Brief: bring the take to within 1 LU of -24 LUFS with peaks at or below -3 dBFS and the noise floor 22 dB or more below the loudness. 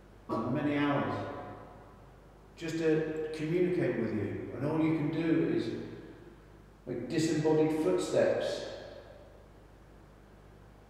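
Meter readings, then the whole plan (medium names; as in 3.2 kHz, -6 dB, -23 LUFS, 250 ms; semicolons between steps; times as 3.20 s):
hum 50 Hz; highest harmonic 200 Hz; hum level -56 dBFS; loudness -32.0 LUFS; peak level -15.5 dBFS; loudness target -24.0 LUFS
-> de-hum 50 Hz, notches 4; trim +8 dB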